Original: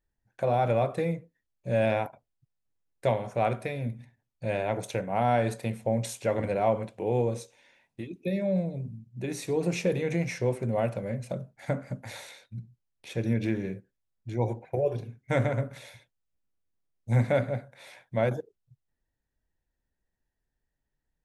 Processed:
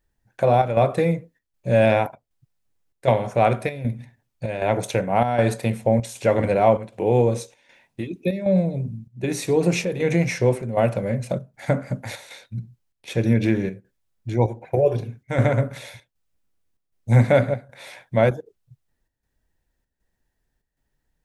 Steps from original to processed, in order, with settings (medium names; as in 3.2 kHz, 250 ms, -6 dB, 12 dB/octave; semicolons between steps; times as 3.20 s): square tremolo 1.3 Hz, depth 60%, duty 80%; trim +8.5 dB